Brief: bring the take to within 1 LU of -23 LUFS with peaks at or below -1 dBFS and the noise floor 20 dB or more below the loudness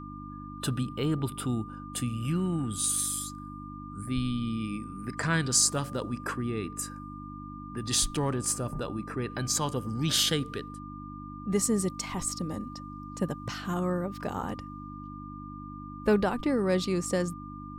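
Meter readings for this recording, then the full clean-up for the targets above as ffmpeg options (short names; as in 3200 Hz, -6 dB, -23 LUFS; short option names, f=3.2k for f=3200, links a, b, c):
hum 50 Hz; harmonics up to 300 Hz; hum level -41 dBFS; steady tone 1200 Hz; tone level -44 dBFS; loudness -30.0 LUFS; peak -11.0 dBFS; loudness target -23.0 LUFS
-> -af "bandreject=f=50:t=h:w=4,bandreject=f=100:t=h:w=4,bandreject=f=150:t=h:w=4,bandreject=f=200:t=h:w=4,bandreject=f=250:t=h:w=4,bandreject=f=300:t=h:w=4"
-af "bandreject=f=1.2k:w=30"
-af "volume=7dB"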